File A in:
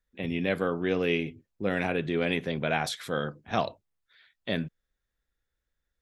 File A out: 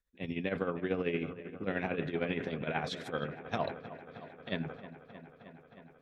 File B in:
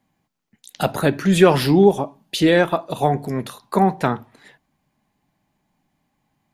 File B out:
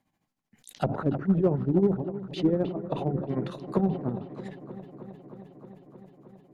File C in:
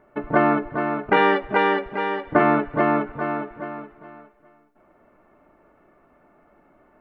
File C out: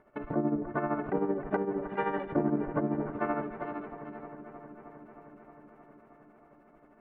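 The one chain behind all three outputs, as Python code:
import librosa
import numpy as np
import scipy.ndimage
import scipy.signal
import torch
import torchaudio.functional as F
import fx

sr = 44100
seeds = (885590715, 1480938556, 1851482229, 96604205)

p1 = fx.env_lowpass_down(x, sr, base_hz=360.0, full_db=-16.0)
p2 = p1 * (1.0 - 0.83 / 2.0 + 0.83 / 2.0 * np.cos(2.0 * np.pi * 13.0 * (np.arange(len(p1)) / sr)))
p3 = np.clip(10.0 ** (14.0 / 20.0) * p2, -1.0, 1.0) / 10.0 ** (14.0 / 20.0)
p4 = p2 + F.gain(torch.from_numpy(p3), -4.0).numpy()
p5 = fx.echo_wet_lowpass(p4, sr, ms=312, feedback_pct=79, hz=2400.0, wet_db=-14)
p6 = fx.sustainer(p5, sr, db_per_s=100.0)
y = F.gain(torch.from_numpy(p6), -7.5).numpy()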